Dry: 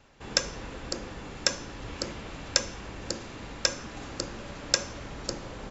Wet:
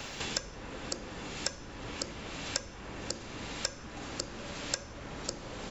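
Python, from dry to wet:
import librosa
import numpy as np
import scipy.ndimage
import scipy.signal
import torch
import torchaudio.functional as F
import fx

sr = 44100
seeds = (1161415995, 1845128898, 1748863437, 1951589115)

y = fx.band_squash(x, sr, depth_pct=100)
y = F.gain(torch.from_numpy(y), -6.0).numpy()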